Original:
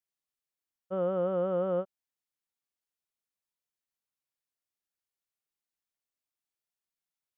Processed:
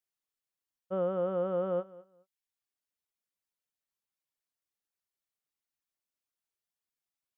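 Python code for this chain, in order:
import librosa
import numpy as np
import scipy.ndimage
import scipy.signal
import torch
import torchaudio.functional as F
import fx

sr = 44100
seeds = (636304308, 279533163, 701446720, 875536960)

y = fx.dereverb_blind(x, sr, rt60_s=0.64)
y = fx.echo_feedback(y, sr, ms=211, feedback_pct=20, wet_db=-20.0)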